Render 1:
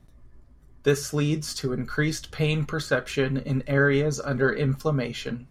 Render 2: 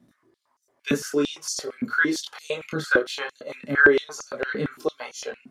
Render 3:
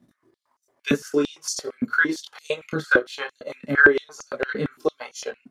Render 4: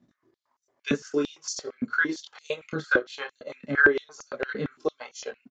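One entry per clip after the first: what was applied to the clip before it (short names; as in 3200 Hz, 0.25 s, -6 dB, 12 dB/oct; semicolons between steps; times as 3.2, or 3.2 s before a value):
wow and flutter 26 cents; chorus voices 6, 0.38 Hz, delay 26 ms, depth 2 ms; stepped high-pass 8.8 Hz 220–6000 Hz; gain +1 dB
transient shaper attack +3 dB, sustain -7 dB
downsampling 16000 Hz; gain -4.5 dB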